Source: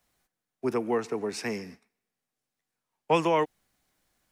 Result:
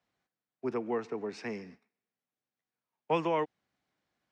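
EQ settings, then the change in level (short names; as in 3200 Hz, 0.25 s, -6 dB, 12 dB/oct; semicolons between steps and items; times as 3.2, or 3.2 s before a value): HPF 100 Hz; air absorption 140 m; -5.0 dB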